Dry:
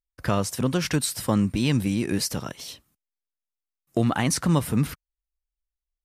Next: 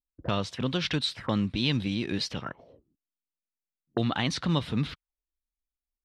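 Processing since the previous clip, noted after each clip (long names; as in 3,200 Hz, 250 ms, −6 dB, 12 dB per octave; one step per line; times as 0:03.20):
envelope-controlled low-pass 250–3,700 Hz up, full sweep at −23.5 dBFS
level −5.5 dB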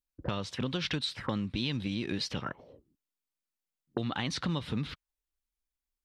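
notch filter 670 Hz, Q 12
downward compressor, threshold −30 dBFS, peak gain reduction 8.5 dB
level +1 dB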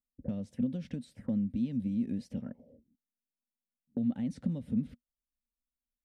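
drawn EQ curve 150 Hz 0 dB, 240 Hz +13 dB, 350 Hz −9 dB, 550 Hz +1 dB, 1,100 Hz −23 dB, 1,900 Hz −15 dB, 4,000 Hz −23 dB, 9,300 Hz −4 dB
level −5 dB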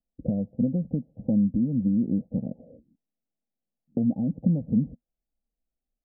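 Butterworth low-pass 810 Hz 96 dB per octave
comb filter 6.1 ms, depth 32%
level +9 dB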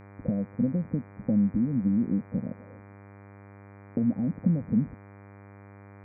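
hum with harmonics 100 Hz, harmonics 24, −47 dBFS −5 dB per octave
level −1.5 dB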